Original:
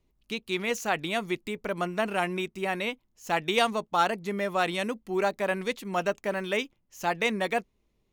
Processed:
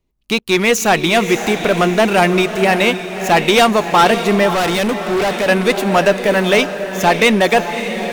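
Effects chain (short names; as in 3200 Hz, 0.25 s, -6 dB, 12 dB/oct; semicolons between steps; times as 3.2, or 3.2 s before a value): sample leveller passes 3; diffused feedback echo 0.589 s, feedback 44%, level -9 dB; 4.54–5.48 hard clip -20.5 dBFS, distortion -14 dB; gain +6.5 dB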